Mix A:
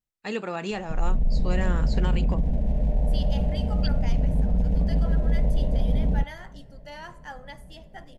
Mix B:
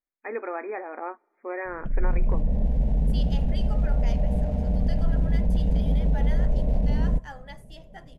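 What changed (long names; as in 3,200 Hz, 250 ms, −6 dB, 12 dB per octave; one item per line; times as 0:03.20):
first voice: add linear-phase brick-wall band-pass 240–2,500 Hz
second voice: send off
background: entry +0.95 s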